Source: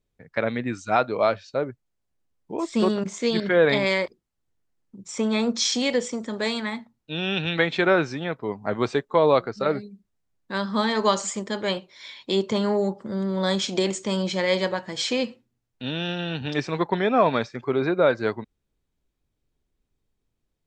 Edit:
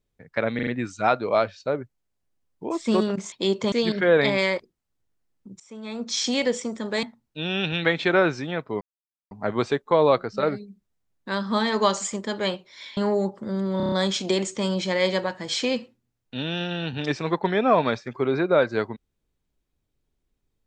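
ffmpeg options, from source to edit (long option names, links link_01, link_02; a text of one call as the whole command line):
ffmpeg -i in.wav -filter_complex "[0:a]asplit=15[link_01][link_02][link_03][link_04][link_05][link_06][link_07][link_08][link_09][link_10][link_11][link_12][link_13][link_14][link_15];[link_01]atrim=end=0.592[link_16];[link_02]atrim=start=0.548:end=0.592[link_17];[link_03]atrim=start=0.548:end=0.592[link_18];[link_04]atrim=start=0.548:end=3.202[link_19];[link_05]atrim=start=12.198:end=12.602[link_20];[link_06]atrim=start=3.198:end=5.08,asetpts=PTS-STARTPTS,afade=type=out:start_time=1.878:duration=0.004:curve=hsin:silence=0.112202[link_21];[link_07]atrim=start=5.08:end=6.512,asetpts=PTS-STARTPTS,afade=type=in:duration=0.69:curve=qua:silence=0.112202[link_22];[link_08]atrim=start=6.758:end=8.54,asetpts=PTS-STARTPTS,afade=type=out:start_time=1.778:duration=0.004:curve=hsin,apad=pad_dur=0.5[link_23];[link_09]atrim=start=8.54:end=12.202,asetpts=PTS-STARTPTS,afade=type=in:duration=0.004:curve=hsin[link_24];[link_10]atrim=start=12.598:end=13.432[link_25];[link_11]atrim=start=13.398:end=13.432[link_26];[link_12]atrim=start=13.398:end=13.432[link_27];[link_13]atrim=start=13.398:end=13.432[link_28];[link_14]atrim=start=13.398:end=13.432[link_29];[link_15]atrim=start=13.398[link_30];[link_16][link_17]acrossfade=duration=0.004:curve1=hsin:curve2=hsin[link_31];[link_31][link_18]acrossfade=duration=0.004:curve1=hsin:curve2=hsin[link_32];[link_32][link_19]acrossfade=duration=0.004:curve1=hsin:curve2=hsin[link_33];[link_33][link_20]acrossfade=duration=0.004:curve1=hsin:curve2=hsin[link_34];[link_21][link_22]concat=n=2:v=0:a=1[link_35];[link_34][link_35]acrossfade=duration=0.004:curve1=hsin:curve2=hsin[link_36];[link_23][link_24]concat=n=2:v=0:a=1[link_37];[link_36][link_37]acrossfade=duration=0.004:curve1=hsin:curve2=hsin[link_38];[link_38][link_25]acrossfade=duration=0.004:curve1=hsin:curve2=hsin[link_39];[link_39][link_26]acrossfade=duration=0.004:curve1=hsin:curve2=hsin[link_40];[link_40][link_27]acrossfade=duration=0.004:curve1=hsin:curve2=hsin[link_41];[link_41][link_28]acrossfade=duration=0.004:curve1=hsin:curve2=hsin[link_42];[link_42][link_29]acrossfade=duration=0.004:curve1=hsin:curve2=hsin[link_43];[link_43][link_30]acrossfade=duration=0.004:curve1=hsin:curve2=hsin" out.wav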